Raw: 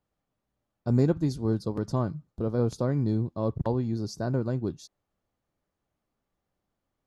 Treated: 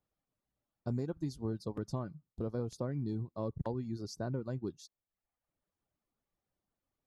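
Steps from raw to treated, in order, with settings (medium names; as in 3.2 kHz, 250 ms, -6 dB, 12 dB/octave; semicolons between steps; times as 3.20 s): reverb removal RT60 0.79 s; compression, threshold -26 dBFS, peak gain reduction 8 dB; trim -5.5 dB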